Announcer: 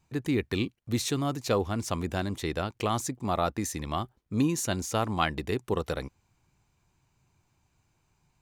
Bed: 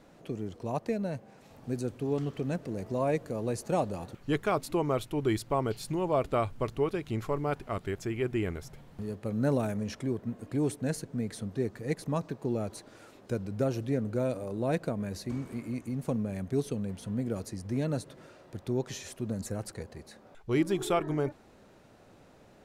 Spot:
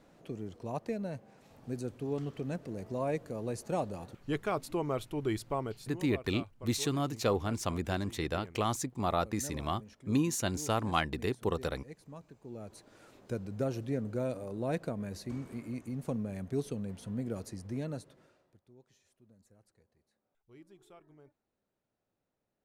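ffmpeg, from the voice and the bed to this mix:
-filter_complex "[0:a]adelay=5750,volume=0.708[s0];[1:a]volume=2.82,afade=t=out:st=5.5:d=0.55:silence=0.223872,afade=t=in:st=12.43:d=0.72:silence=0.211349,afade=t=out:st=17.54:d=1.07:silence=0.0562341[s1];[s0][s1]amix=inputs=2:normalize=0"

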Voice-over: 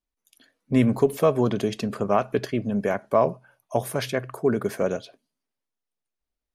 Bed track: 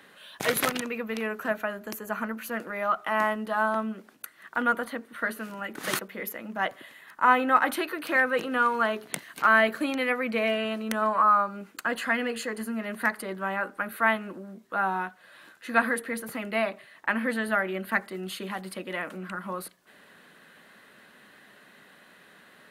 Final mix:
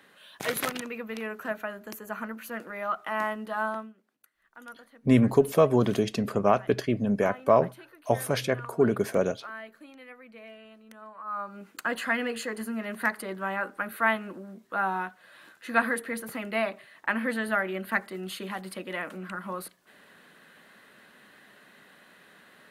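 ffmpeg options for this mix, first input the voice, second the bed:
-filter_complex "[0:a]adelay=4350,volume=0.944[s0];[1:a]volume=6.31,afade=t=out:st=3.69:d=0.24:silence=0.141254,afade=t=in:st=11.24:d=0.57:silence=0.1[s1];[s0][s1]amix=inputs=2:normalize=0"

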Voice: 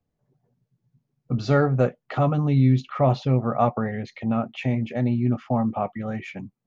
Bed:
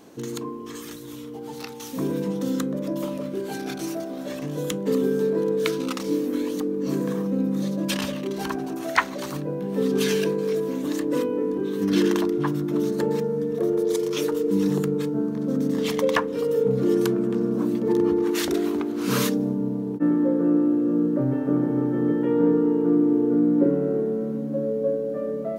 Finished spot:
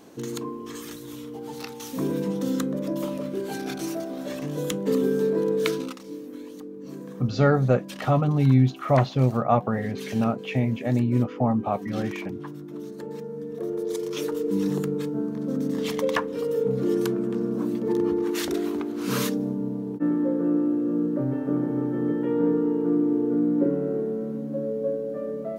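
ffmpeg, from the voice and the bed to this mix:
-filter_complex "[0:a]adelay=5900,volume=1[s0];[1:a]volume=2.99,afade=t=out:st=5.73:d=0.24:silence=0.237137,afade=t=in:st=13.01:d=1.48:silence=0.316228[s1];[s0][s1]amix=inputs=2:normalize=0"

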